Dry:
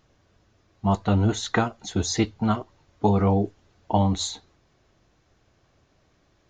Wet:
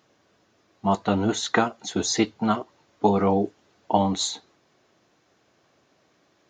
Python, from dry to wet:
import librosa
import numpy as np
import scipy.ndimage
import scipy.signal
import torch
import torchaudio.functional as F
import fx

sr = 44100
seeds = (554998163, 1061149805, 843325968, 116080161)

y = scipy.signal.sosfilt(scipy.signal.butter(2, 210.0, 'highpass', fs=sr, output='sos'), x)
y = y * 10.0 ** (2.5 / 20.0)